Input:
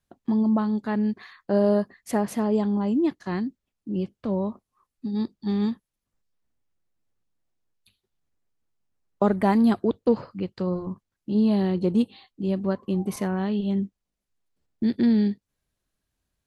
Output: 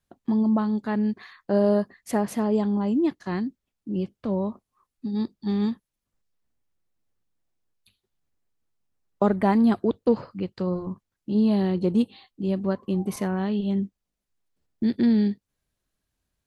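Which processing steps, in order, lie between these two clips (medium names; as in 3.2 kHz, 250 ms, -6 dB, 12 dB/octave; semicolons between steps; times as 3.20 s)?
9.26–9.72 s: treble shelf 7.6 kHz -> 4.8 kHz -7 dB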